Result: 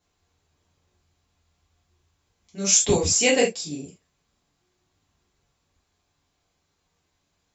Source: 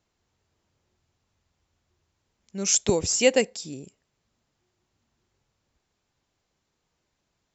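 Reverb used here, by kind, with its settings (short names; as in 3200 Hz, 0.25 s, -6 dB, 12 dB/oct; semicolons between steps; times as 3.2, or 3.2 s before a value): non-linear reverb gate 0.1 s falling, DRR -5.5 dB; gain -3 dB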